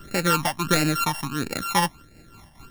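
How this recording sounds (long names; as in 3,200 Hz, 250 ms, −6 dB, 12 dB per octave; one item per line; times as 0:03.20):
a buzz of ramps at a fixed pitch in blocks of 32 samples
phaser sweep stages 12, 1.5 Hz, lowest notch 420–1,100 Hz
amplitude modulation by smooth noise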